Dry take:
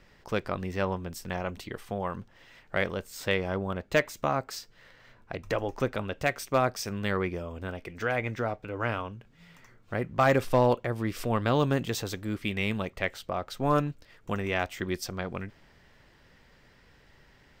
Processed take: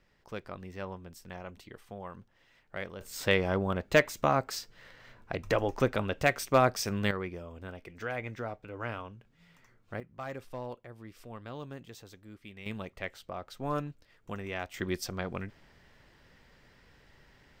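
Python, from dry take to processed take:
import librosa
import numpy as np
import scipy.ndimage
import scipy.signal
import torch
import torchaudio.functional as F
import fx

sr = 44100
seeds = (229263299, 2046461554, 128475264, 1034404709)

y = fx.gain(x, sr, db=fx.steps((0.0, -10.5), (3.01, 1.5), (7.11, -7.0), (10.0, -17.5), (12.66, -8.0), (14.74, -1.5)))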